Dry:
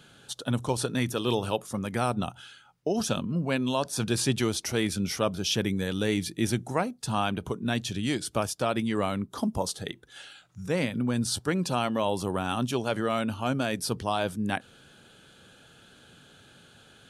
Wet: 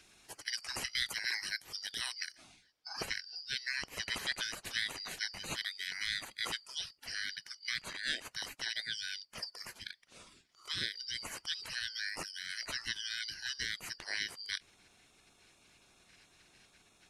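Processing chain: four-band scrambler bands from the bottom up 4321; spectral gate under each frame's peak -15 dB weak; high shelf 5500 Hz -6.5 dB, from 2.38 s -11.5 dB; gain +3 dB

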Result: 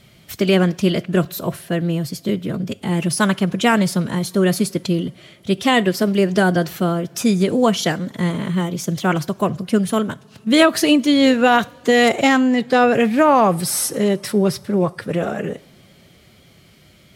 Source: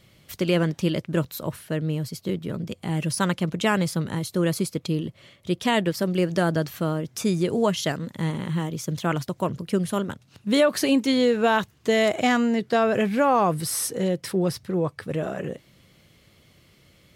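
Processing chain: two-slope reverb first 0.47 s, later 5 s, from -21 dB, DRR 18 dB; formant-preserving pitch shift +1.5 st; gain +6.5 dB

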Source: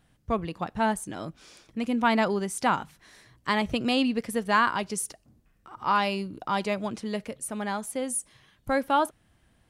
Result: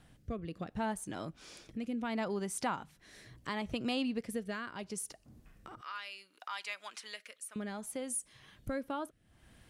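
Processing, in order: 5.81–7.56 Chebyshev high-pass 1600 Hz, order 2; compressor 2:1, threshold -51 dBFS, peak gain reduction 18 dB; rotary speaker horn 0.7 Hz; gain +6.5 dB

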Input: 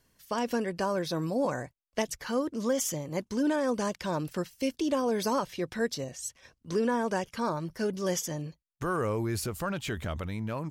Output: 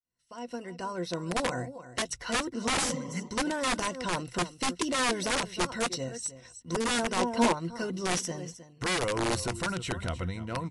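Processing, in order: opening faded in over 1.79 s; ripple EQ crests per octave 2, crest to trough 11 dB; echo 0.311 s -14.5 dB; 2.77–3.26 spectral repair 210–1300 Hz both; wrapped overs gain 21.5 dB; 6.05–6.91 dynamic EQ 3400 Hz, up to -5 dB, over -46 dBFS, Q 0.86; 7.17–7.53 spectral gain 210–1100 Hz +8 dB; MP3 64 kbps 24000 Hz

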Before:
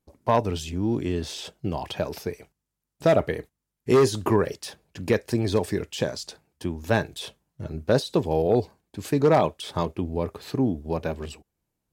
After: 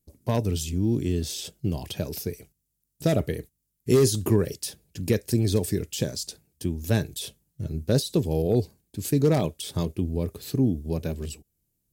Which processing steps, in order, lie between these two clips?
EQ curve 130 Hz 0 dB, 420 Hz -6 dB, 940 Hz -17 dB, 14000 Hz +8 dB; gain +4 dB

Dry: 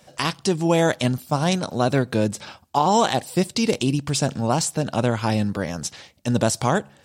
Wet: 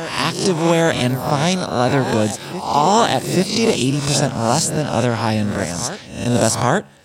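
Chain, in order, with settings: spectral swells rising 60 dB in 0.61 s; reverse echo 0.829 s -12 dB; gain +2.5 dB

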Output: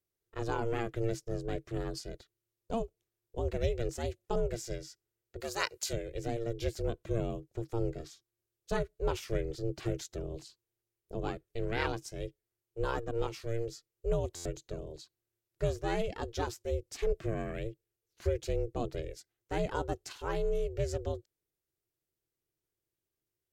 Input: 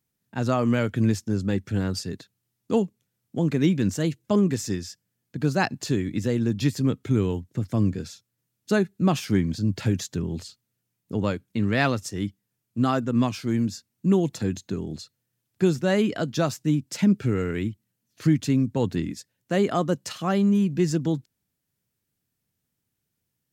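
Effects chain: ring modulator 230 Hz; 5.4–5.93 tilt +3.5 dB/oct; stuck buffer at 14.35, samples 512, times 8; gain -7.5 dB

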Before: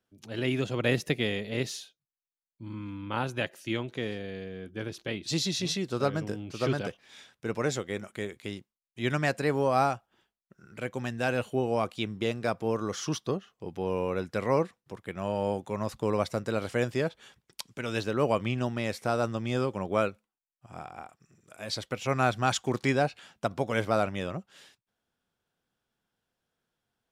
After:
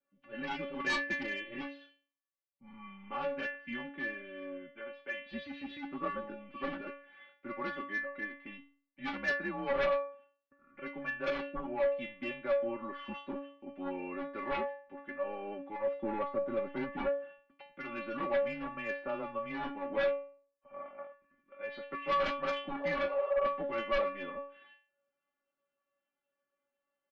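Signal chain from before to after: 16.02–17.64 tilt -3 dB/oct; 22.75–23.42 spectral repair 500–1500 Hz both; mistuned SSB -100 Hz 260–2600 Hz; 4.71–5.26 resonant low shelf 370 Hz -10 dB, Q 1.5; metallic resonator 280 Hz, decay 0.46 s, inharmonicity 0.002; sine folder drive 10 dB, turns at -29.5 dBFS; comb 5.2 ms, depth 83%

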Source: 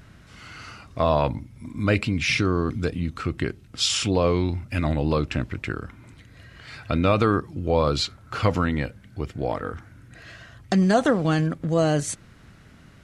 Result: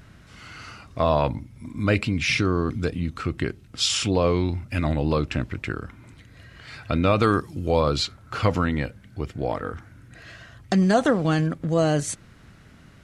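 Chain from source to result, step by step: 7.22–7.79 high shelf 2800 Hz -> 5100 Hz +11.5 dB

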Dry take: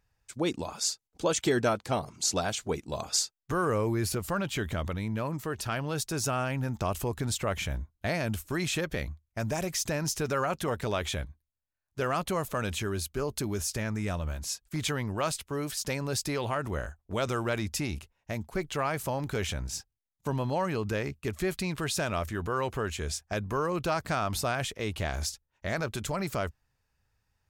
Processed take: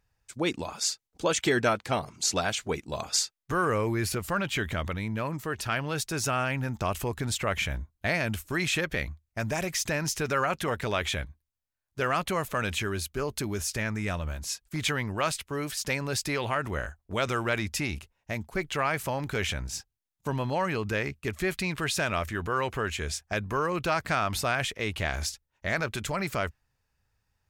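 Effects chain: dynamic EQ 2100 Hz, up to +7 dB, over -47 dBFS, Q 0.94

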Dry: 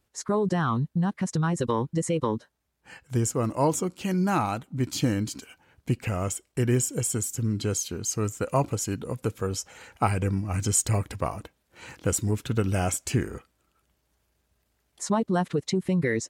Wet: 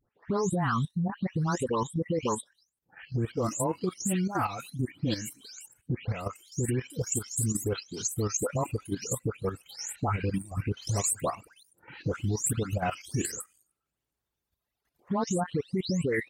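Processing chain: spectral delay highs late, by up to 0.328 s; reverb removal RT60 1.8 s; limiter -20 dBFS, peak gain reduction 9 dB; level quantiser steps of 10 dB; gain +3 dB

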